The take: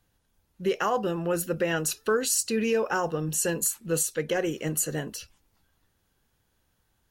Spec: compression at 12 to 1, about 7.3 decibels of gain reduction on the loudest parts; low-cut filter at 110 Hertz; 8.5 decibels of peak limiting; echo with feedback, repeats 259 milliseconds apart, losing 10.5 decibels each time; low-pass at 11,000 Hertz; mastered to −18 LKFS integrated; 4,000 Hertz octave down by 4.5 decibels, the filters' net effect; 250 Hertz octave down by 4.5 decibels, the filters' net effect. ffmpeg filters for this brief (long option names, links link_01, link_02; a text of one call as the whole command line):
ffmpeg -i in.wav -af "highpass=110,lowpass=11000,equalizer=frequency=250:width_type=o:gain=-6.5,equalizer=frequency=4000:width_type=o:gain=-6.5,acompressor=threshold=-30dB:ratio=12,alimiter=level_in=3dB:limit=-24dB:level=0:latency=1,volume=-3dB,aecho=1:1:259|518|777:0.299|0.0896|0.0269,volume=18.5dB" out.wav